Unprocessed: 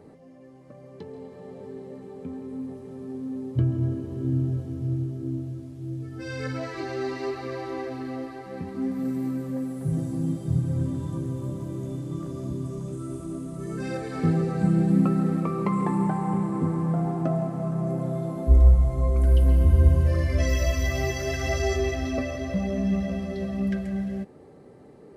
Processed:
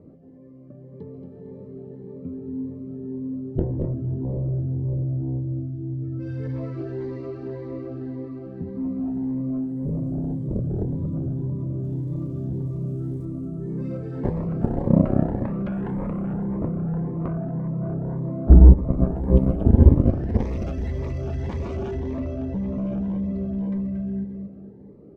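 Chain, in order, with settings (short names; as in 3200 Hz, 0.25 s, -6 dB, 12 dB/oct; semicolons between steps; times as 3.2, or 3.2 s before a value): 11.83–13.25 switching spikes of -35.5 dBFS; LPF 2200 Hz 6 dB/oct; feedback echo 0.229 s, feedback 37%, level -7 dB; added harmonics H 7 -11 dB, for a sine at -6 dBFS; tilt shelf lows +8.5 dB, about 900 Hz; notch 780 Hz, Q 21; cascading phaser rising 1.8 Hz; gain -3.5 dB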